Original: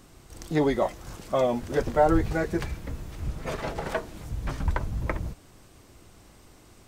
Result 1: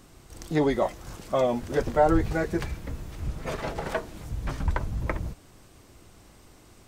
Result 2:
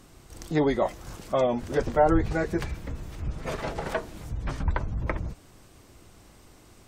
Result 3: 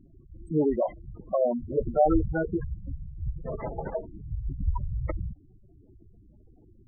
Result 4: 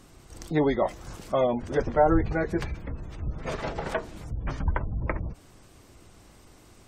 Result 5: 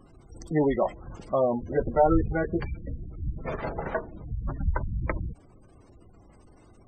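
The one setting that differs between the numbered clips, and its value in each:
gate on every frequency bin, under each frame's peak: −60, −45, −10, −35, −20 decibels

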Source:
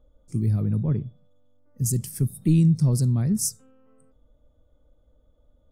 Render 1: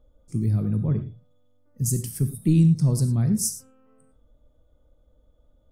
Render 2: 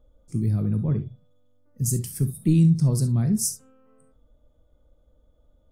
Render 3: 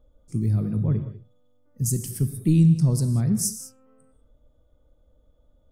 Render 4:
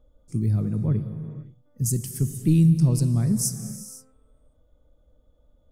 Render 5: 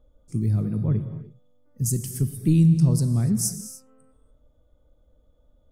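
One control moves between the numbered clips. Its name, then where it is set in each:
reverb whose tail is shaped and stops, gate: 130, 90, 220, 540, 320 milliseconds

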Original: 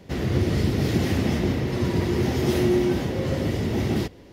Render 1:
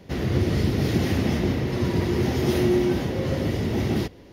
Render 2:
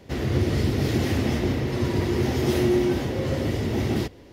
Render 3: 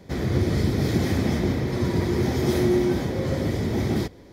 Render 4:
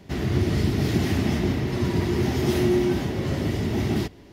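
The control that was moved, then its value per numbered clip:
notch filter, centre frequency: 7,800, 180, 2,800, 510 Hertz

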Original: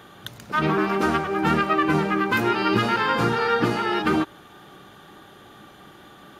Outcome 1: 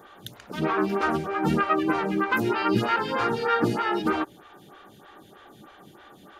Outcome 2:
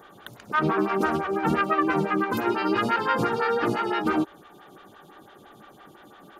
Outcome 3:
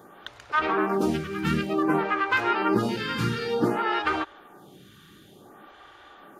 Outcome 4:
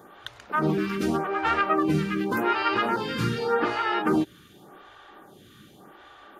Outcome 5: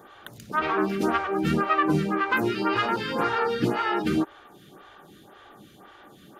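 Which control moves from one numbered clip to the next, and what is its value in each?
phaser with staggered stages, speed: 3.2, 5.9, 0.55, 0.86, 1.9 Hertz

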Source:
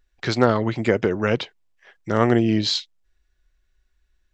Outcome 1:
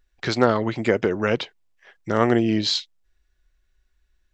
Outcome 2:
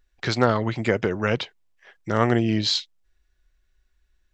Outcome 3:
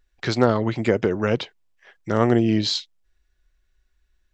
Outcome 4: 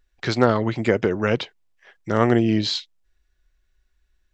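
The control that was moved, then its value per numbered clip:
dynamic equaliser, frequency: 110, 330, 2,000, 6,500 Hertz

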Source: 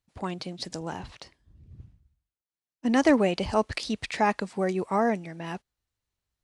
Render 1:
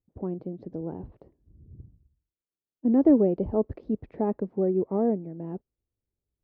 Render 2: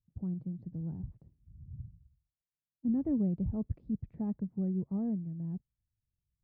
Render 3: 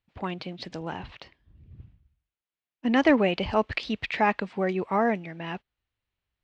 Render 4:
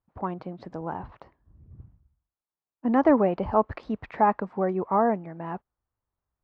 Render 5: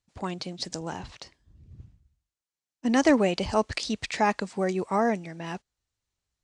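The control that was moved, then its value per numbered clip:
low-pass with resonance, frequency: 410, 150, 2,900, 1,100, 7,400 Hertz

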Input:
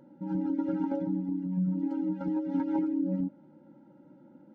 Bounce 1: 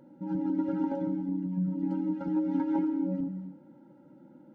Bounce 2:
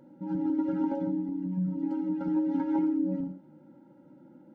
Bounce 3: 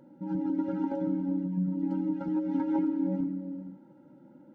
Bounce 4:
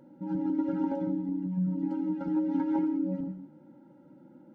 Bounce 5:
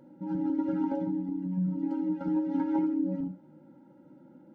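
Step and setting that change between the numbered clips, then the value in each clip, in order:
reverb whose tail is shaped and stops, gate: 310, 140, 510, 210, 100 milliseconds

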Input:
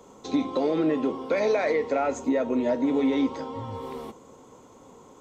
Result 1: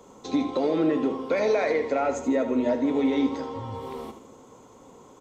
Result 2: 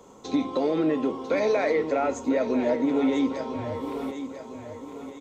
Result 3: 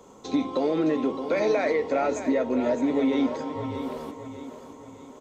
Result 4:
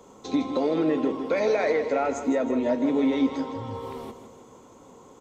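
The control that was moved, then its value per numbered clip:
repeating echo, delay time: 79, 998, 616, 159 milliseconds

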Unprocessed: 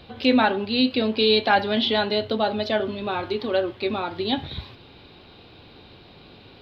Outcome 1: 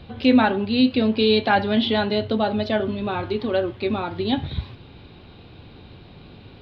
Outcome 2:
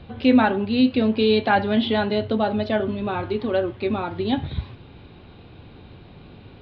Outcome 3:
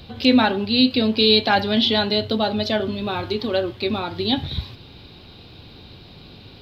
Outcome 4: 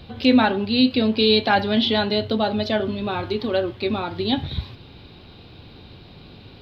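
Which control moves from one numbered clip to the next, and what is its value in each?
bass and treble, treble: −6, −15, +12, +4 decibels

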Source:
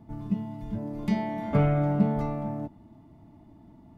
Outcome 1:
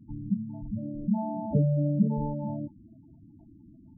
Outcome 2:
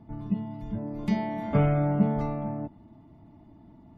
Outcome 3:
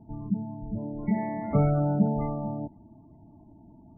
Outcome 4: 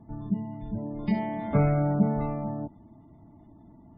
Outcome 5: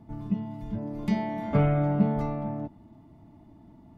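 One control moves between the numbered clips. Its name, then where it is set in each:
gate on every frequency bin, under each frame's peak: −10, −50, −25, −35, −60 decibels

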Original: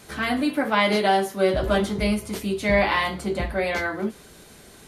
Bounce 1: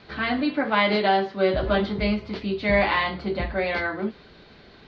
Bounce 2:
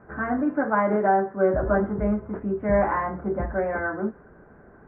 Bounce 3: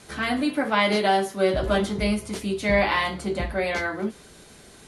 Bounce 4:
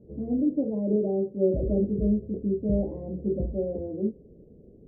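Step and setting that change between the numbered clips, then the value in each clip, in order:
elliptic low-pass filter, frequency: 4,500, 1,600, 11,000, 510 Hertz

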